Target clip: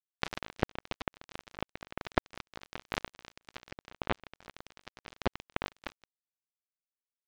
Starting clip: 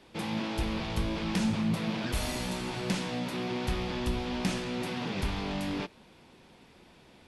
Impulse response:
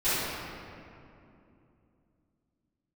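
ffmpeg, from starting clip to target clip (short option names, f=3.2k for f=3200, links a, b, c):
-filter_complex "[1:a]atrim=start_sample=2205,afade=t=out:st=0.38:d=0.01,atrim=end_sample=17199[a];[0:a][a]afir=irnorm=-1:irlink=0,adynamicequalizer=threshold=0.02:dfrequency=310:dqfactor=6.6:tfrequency=310:tqfactor=6.6:attack=5:release=100:ratio=0.375:range=1.5:mode=boostabove:tftype=bell,lowpass=f=2.7k:w=0.5412,lowpass=f=2.7k:w=1.3066,acompressor=threshold=-25dB:ratio=20,acrusher=bits=2:mix=0:aa=0.5,volume=15.5dB"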